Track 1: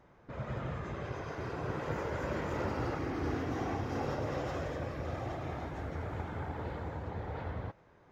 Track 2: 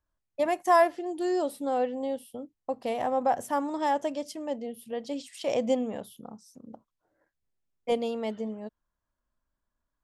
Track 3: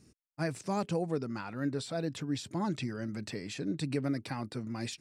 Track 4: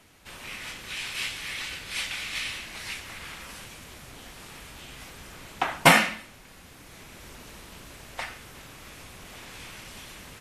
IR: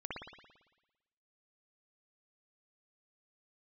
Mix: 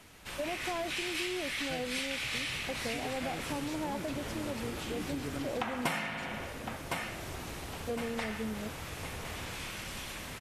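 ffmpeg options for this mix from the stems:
-filter_complex "[0:a]adelay=1850,volume=0.447[s0];[1:a]asoftclip=type=tanh:threshold=0.0631,equalizer=f=180:w=0.36:g=9.5,volume=0.376[s1];[2:a]adelay=1300,volume=0.501,asplit=3[s2][s3][s4];[s2]atrim=end=1.99,asetpts=PTS-STARTPTS,afade=t=out:st=1.986:d=0.004:c=hsin[s5];[s3]atrim=start=1.99:end=2.93,asetpts=PTS-STARTPTS,volume=0[s6];[s4]atrim=start=2.93,asetpts=PTS-STARTPTS,afade=t=in:d=0.004:c=hsin[s7];[s5][s6][s7]concat=n=3:v=0:a=1[s8];[3:a]volume=0.891,asplit=3[s9][s10][s11];[s10]volume=0.631[s12];[s11]volume=0.2[s13];[4:a]atrim=start_sample=2205[s14];[s12][s14]afir=irnorm=-1:irlink=0[s15];[s13]aecho=0:1:1059|2118|3177|4236|5295:1|0.39|0.152|0.0593|0.0231[s16];[s0][s1][s8][s9][s15][s16]amix=inputs=6:normalize=0,acompressor=threshold=0.0251:ratio=6"

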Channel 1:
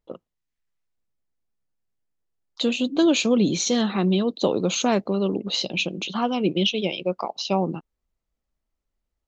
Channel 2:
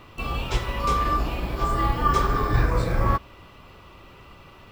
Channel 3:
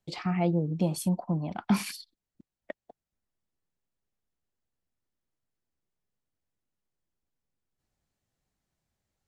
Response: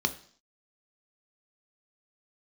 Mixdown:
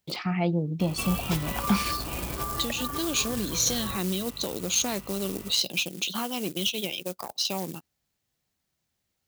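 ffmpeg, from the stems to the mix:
-filter_complex "[0:a]aeval=exprs='(tanh(4.47*val(0)+0.45)-tanh(0.45))/4.47':c=same,volume=0.473[s0];[1:a]acompressor=threshold=0.0447:ratio=12,lowpass=f=2200:p=1,aeval=exprs='val(0)+0.00708*(sin(2*PI*50*n/s)+sin(2*PI*2*50*n/s)/2+sin(2*PI*3*50*n/s)/3+sin(2*PI*4*50*n/s)/4+sin(2*PI*5*50*n/s)/5)':c=same,adelay=800,volume=0.75[s1];[2:a]lowpass=4100,volume=0.794[s2];[s0][s1]amix=inputs=2:normalize=0,acrusher=bits=5:mode=log:mix=0:aa=0.000001,alimiter=limit=0.0631:level=0:latency=1:release=275,volume=1[s3];[s2][s3]amix=inputs=2:normalize=0,crystalizer=i=6:c=0,highpass=63,lowshelf=f=440:g=3"

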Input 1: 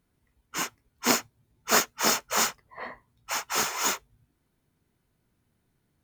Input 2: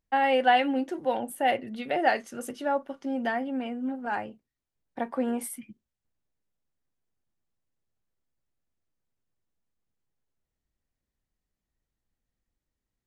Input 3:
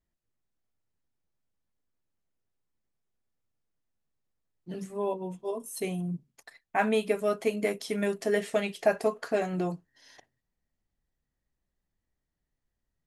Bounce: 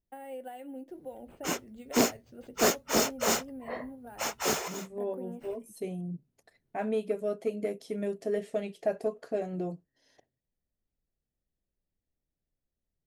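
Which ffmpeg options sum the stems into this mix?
-filter_complex "[0:a]adelay=900,volume=0.708[s0];[1:a]acompressor=threshold=0.0355:ratio=4,acrusher=samples=4:mix=1:aa=0.000001,volume=0.119[s1];[2:a]volume=0.251,asplit=2[s2][s3];[s3]apad=whole_len=305934[s4];[s0][s4]sidechaincompress=threshold=0.00126:ratio=8:attack=5.3:release=1250[s5];[s5][s1][s2]amix=inputs=3:normalize=0,lowshelf=f=770:t=q:w=1.5:g=7.5,asoftclip=type=tanh:threshold=0.168"

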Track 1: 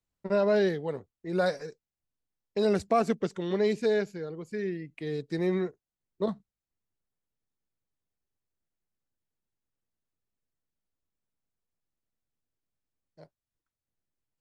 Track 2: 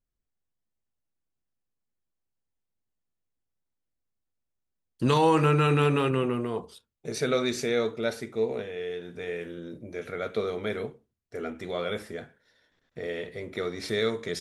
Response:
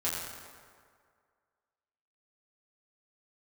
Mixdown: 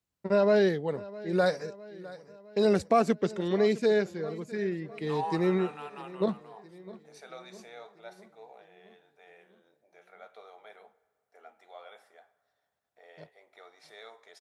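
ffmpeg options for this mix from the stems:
-filter_complex "[0:a]volume=1.19,asplit=2[s0][s1];[s1]volume=0.112[s2];[1:a]highpass=f=770:t=q:w=5.4,volume=0.1,asplit=2[s3][s4];[s4]volume=0.0708[s5];[2:a]atrim=start_sample=2205[s6];[s5][s6]afir=irnorm=-1:irlink=0[s7];[s2]aecho=0:1:658|1316|1974|2632|3290|3948|4606|5264:1|0.56|0.314|0.176|0.0983|0.0551|0.0308|0.0173[s8];[s0][s3][s7][s8]amix=inputs=4:normalize=0,highpass=69"

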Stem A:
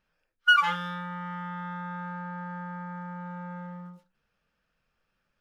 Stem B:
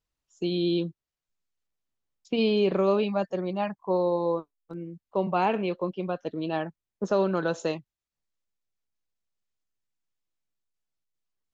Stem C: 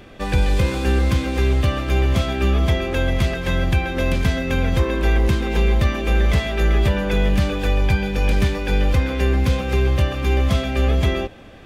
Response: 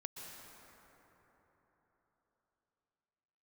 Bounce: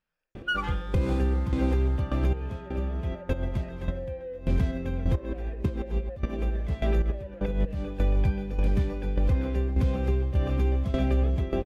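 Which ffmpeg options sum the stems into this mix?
-filter_complex "[0:a]volume=0.355[s0];[1:a]flanger=delay=0.9:depth=6.8:regen=61:speed=0.25:shape=triangular,asplit=2[s1][s2];[s2]highpass=f=720:p=1,volume=22.4,asoftclip=type=tanh:threshold=0.211[s3];[s1][s3]amix=inputs=2:normalize=0,lowpass=f=1100:p=1,volume=0.501,asplit=3[s4][s5][s6];[s4]bandpass=f=530:t=q:w=8,volume=1[s7];[s5]bandpass=f=1840:t=q:w=8,volume=0.501[s8];[s6]bandpass=f=2480:t=q:w=8,volume=0.355[s9];[s7][s8][s9]amix=inputs=3:normalize=0,volume=0.2,asplit=2[s10][s11];[2:a]tiltshelf=f=970:g=7,aeval=exprs='val(0)*pow(10,-18*if(lt(mod(1.7*n/s,1),2*abs(1.7)/1000),1-mod(1.7*n/s,1)/(2*abs(1.7)/1000),(mod(1.7*n/s,1)-2*abs(1.7)/1000)/(1-2*abs(1.7)/1000))/20)':c=same,adelay=350,volume=0.841[s12];[s11]apad=whole_len=529209[s13];[s12][s13]sidechaincompress=threshold=0.002:ratio=16:attack=10:release=115[s14];[s0][s10][s14]amix=inputs=3:normalize=0,alimiter=limit=0.158:level=0:latency=1:release=132"

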